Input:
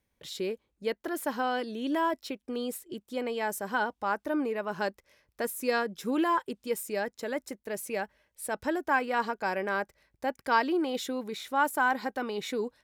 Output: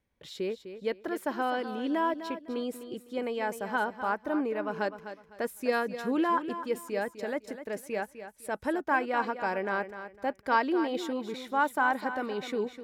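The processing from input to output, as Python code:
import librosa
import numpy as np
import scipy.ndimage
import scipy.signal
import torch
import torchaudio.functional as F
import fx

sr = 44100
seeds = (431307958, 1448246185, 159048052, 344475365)

y = fx.high_shelf(x, sr, hz=5000.0, db=-11.0)
y = fx.echo_feedback(y, sr, ms=253, feedback_pct=27, wet_db=-11.0)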